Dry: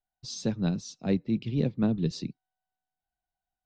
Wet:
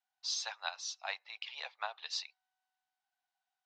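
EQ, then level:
Butterworth high-pass 770 Hz 48 dB per octave
low-pass filter 5,600 Hz 12 dB per octave
+5.5 dB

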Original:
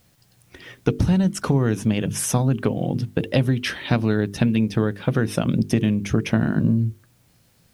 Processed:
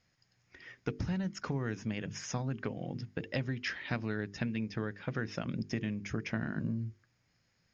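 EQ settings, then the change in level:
Chebyshev low-pass with heavy ripple 6,900 Hz, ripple 9 dB
−7.0 dB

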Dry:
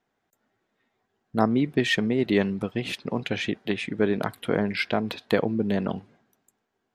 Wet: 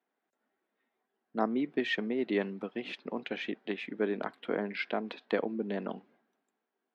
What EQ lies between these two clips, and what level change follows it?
high-pass filter 220 Hz 24 dB per octave
low-pass filter 3,300 Hz 12 dB per octave
−7.0 dB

